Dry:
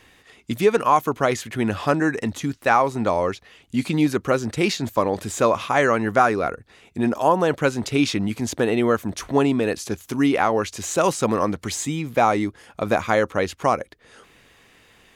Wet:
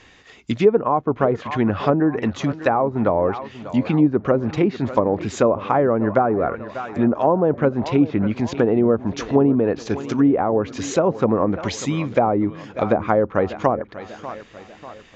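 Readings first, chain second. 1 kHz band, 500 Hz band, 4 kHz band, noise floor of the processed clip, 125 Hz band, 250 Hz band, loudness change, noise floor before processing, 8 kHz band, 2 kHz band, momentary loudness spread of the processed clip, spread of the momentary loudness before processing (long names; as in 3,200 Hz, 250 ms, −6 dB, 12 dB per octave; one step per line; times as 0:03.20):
−1.5 dB, +2.5 dB, −5.5 dB, −47 dBFS, +3.5 dB, +3.5 dB, +1.5 dB, −55 dBFS, −6.5 dB, −5.5 dB, 8 LU, 8 LU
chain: feedback echo with a low-pass in the loop 592 ms, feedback 51%, low-pass 2,500 Hz, level −16 dB
downsampling to 16,000 Hz
treble cut that deepens with the level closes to 650 Hz, closed at −15.5 dBFS
level +3.5 dB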